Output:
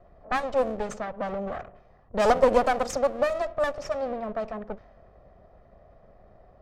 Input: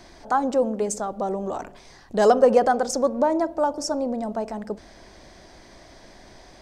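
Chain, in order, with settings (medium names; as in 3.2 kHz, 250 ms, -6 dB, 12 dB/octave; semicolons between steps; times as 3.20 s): comb filter that takes the minimum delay 1.6 ms; level-controlled noise filter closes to 730 Hz, open at -19 dBFS; trim -2.5 dB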